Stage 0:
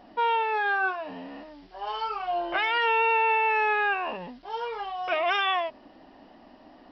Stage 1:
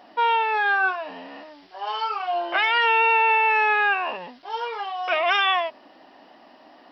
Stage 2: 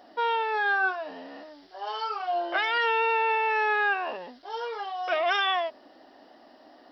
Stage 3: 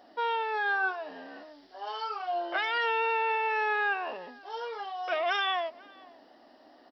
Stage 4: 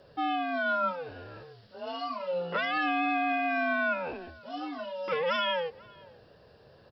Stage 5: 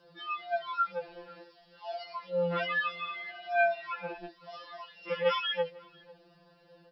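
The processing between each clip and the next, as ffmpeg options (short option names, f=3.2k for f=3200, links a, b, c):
-af "highpass=f=680:p=1,volume=6dB"
-af "equalizer=f=160:t=o:w=0.67:g=-10,equalizer=f=1k:t=o:w=0.67:g=-7,equalizer=f=2.5k:t=o:w=0.67:g=-10"
-filter_complex "[0:a]asplit=2[a][b];[b]adelay=495.6,volume=-23dB,highshelf=f=4k:g=-11.2[c];[a][c]amix=inputs=2:normalize=0,volume=-3.5dB"
-af "afreqshift=-170"
-af "afftfilt=real='re*2.83*eq(mod(b,8),0)':imag='im*2.83*eq(mod(b,8),0)':win_size=2048:overlap=0.75"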